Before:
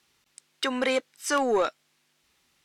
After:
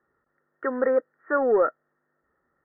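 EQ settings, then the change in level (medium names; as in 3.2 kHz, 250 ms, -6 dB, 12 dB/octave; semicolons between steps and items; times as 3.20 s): rippled Chebyshev low-pass 1.9 kHz, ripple 9 dB; +5.5 dB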